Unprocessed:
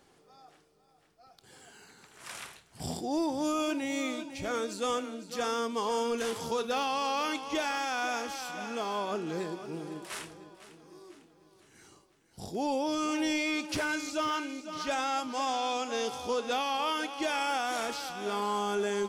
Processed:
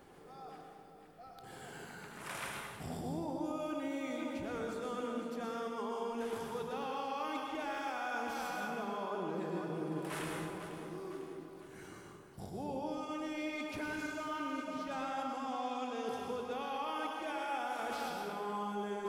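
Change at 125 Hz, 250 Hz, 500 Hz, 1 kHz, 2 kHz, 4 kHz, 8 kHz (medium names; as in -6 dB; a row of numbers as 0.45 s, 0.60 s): -0.5 dB, -5.5 dB, -6.5 dB, -6.5 dB, -7.5 dB, -12.0 dB, -12.5 dB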